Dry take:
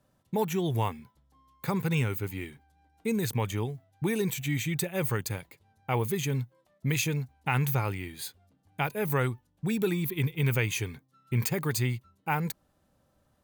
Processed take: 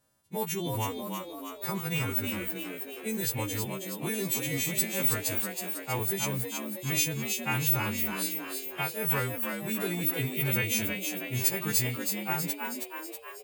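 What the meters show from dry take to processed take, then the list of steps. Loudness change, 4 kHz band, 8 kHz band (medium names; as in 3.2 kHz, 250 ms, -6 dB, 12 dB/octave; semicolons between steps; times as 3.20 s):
+1.0 dB, +4.5 dB, +7.0 dB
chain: partials quantised in pitch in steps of 2 st; frequency-shifting echo 321 ms, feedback 59%, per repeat +83 Hz, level -5 dB; trim -4.5 dB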